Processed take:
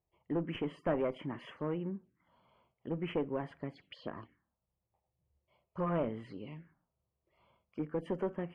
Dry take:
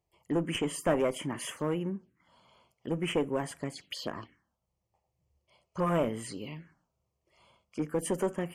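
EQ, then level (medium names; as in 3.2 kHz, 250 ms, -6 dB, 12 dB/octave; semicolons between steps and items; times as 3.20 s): distance through air 380 m; treble shelf 11 kHz -11.5 dB; -4.0 dB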